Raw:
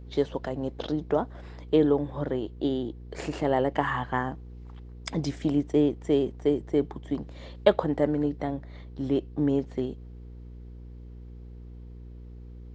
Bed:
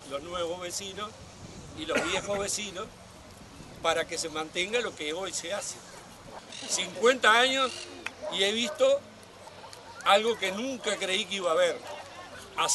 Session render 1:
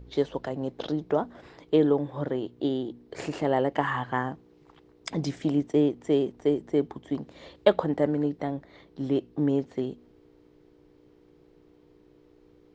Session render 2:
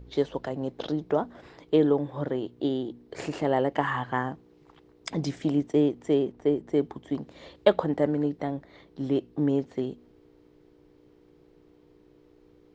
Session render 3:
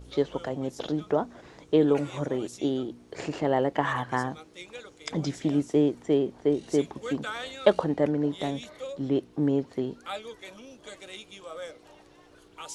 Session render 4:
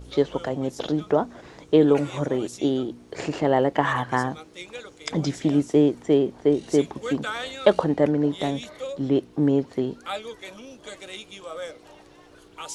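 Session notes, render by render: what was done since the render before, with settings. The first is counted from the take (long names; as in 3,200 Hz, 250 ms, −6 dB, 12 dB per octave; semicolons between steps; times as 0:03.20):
hum removal 60 Hz, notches 4
0:06.13–0:06.67: high-shelf EQ 5,600 Hz → 4,000 Hz −9.5 dB
mix in bed −14.5 dB
level +4.5 dB; brickwall limiter −3 dBFS, peak gain reduction 2 dB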